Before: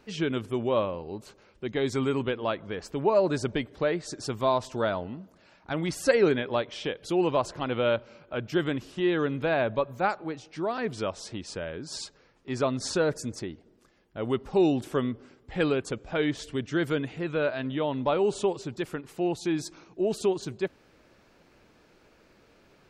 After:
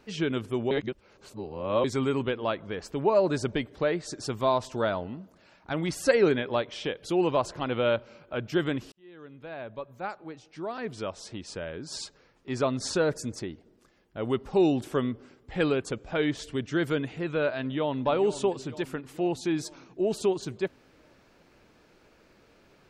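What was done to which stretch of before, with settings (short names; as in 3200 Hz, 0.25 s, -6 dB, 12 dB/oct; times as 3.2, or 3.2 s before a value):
0.71–1.84 reverse
8.92–12.04 fade in
17.59–18.03 echo throw 0.46 s, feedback 60%, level -13 dB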